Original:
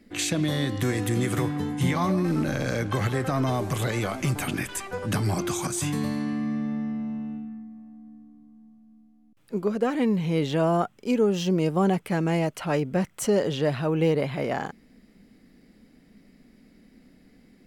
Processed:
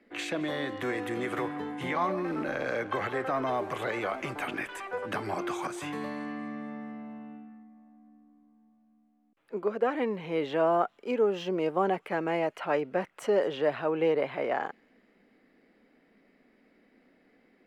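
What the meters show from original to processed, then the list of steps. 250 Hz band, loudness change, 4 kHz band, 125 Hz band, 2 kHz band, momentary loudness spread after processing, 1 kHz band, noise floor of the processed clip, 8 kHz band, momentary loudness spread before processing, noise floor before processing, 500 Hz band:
-9.0 dB, -5.0 dB, -7.5 dB, -17.0 dB, -1.5 dB, 11 LU, -0.5 dB, -67 dBFS, under -15 dB, 8 LU, -58 dBFS, -2.0 dB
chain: three-band isolator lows -20 dB, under 330 Hz, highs -18 dB, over 2900 Hz; on a send: thin delay 0.22 s, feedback 50%, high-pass 4000 Hz, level -22 dB

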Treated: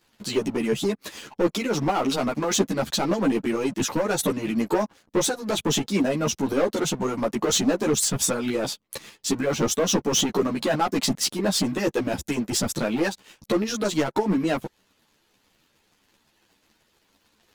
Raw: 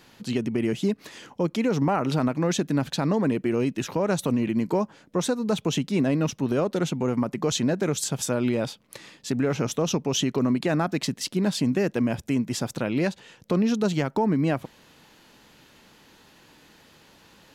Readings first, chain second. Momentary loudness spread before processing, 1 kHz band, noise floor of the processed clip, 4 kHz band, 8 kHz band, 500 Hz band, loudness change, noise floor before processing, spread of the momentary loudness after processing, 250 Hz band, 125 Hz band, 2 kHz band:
5 LU, +3.0 dB, -67 dBFS, +5.5 dB, +7.5 dB, +2.0 dB, +1.0 dB, -56 dBFS, 6 LU, -1.0 dB, -4.0 dB, +3.0 dB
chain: high shelf 4400 Hz +3.5 dB; harmonic-percussive split harmonic -13 dB; dynamic EQ 2400 Hz, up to -3 dB, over -45 dBFS, Q 0.86; sample leveller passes 3; ensemble effect

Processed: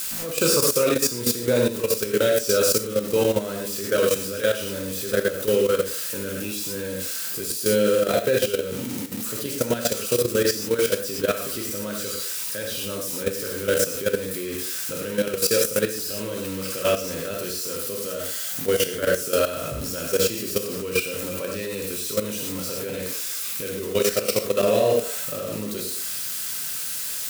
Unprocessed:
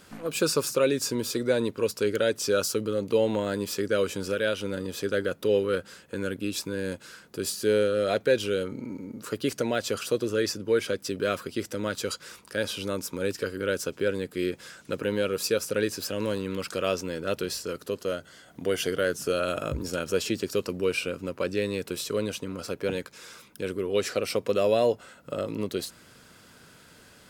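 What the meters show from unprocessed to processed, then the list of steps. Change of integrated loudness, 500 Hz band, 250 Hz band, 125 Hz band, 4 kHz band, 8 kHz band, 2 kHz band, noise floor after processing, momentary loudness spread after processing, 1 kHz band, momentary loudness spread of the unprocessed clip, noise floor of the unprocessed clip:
+5.0 dB, +3.5 dB, +2.0 dB, +3.0 dB, +5.5 dB, +10.0 dB, +3.0 dB, -30 dBFS, 9 LU, +3.0 dB, 10 LU, -54 dBFS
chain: switching spikes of -23.5 dBFS; on a send: delay with a stepping band-pass 0.112 s, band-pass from 400 Hz, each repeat 1.4 oct, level -11 dB; on the sum: non-linear reverb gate 0.14 s flat, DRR -1 dB; level quantiser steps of 11 dB; gain +3.5 dB

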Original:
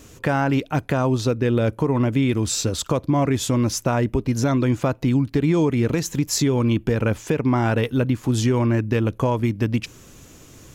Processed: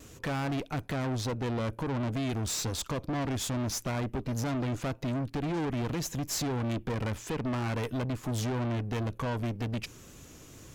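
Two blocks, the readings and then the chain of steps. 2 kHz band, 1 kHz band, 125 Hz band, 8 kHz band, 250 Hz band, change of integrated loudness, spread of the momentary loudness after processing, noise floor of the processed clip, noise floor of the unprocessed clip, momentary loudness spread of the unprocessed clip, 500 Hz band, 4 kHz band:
-10.0 dB, -10.0 dB, -11.0 dB, -8.5 dB, -12.5 dB, -11.5 dB, 3 LU, -52 dBFS, -47 dBFS, 4 LU, -13.0 dB, -7.5 dB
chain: half-wave gain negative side -3 dB; tube stage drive 29 dB, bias 0.6; wow and flutter 29 cents

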